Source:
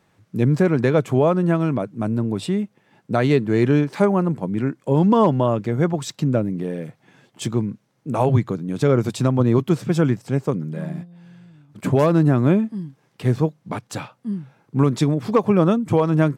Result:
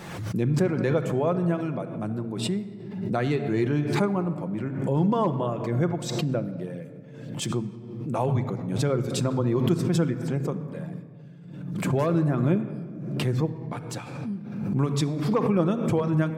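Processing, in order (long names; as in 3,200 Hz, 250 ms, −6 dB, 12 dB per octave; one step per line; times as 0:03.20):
reverb reduction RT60 0.68 s
rectangular room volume 3,100 cubic metres, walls mixed, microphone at 0.85 metres
background raised ahead of every attack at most 45 dB per second
level −7.5 dB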